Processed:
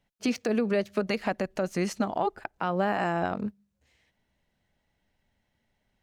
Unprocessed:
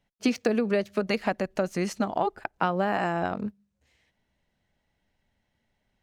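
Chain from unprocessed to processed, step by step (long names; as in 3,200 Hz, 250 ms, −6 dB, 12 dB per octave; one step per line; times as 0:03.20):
brickwall limiter −16.5 dBFS, peak gain reduction 7 dB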